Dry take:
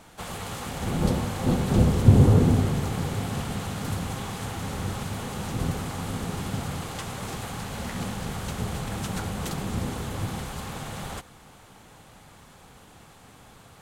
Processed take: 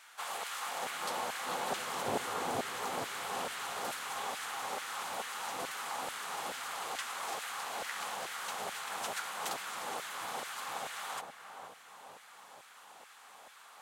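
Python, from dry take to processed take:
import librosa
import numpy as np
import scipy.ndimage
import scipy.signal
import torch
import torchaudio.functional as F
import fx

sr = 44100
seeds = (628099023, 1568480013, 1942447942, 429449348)

y = fx.echo_filtered(x, sr, ms=470, feedback_pct=62, hz=920.0, wet_db=-5)
y = fx.filter_lfo_highpass(y, sr, shape='saw_down', hz=2.3, low_hz=610.0, high_hz=1700.0, q=1.4)
y = y * librosa.db_to_amplitude(-3.0)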